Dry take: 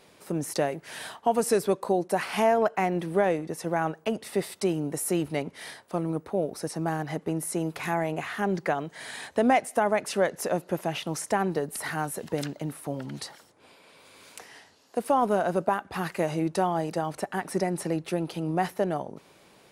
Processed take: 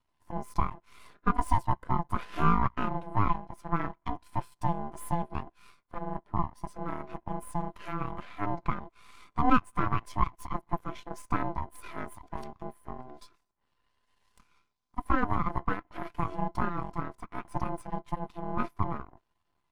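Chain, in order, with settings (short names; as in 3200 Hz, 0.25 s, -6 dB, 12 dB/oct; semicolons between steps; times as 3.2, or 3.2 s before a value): ring modulator 510 Hz; half-wave rectifier; spectral expander 1.5:1; gain +4 dB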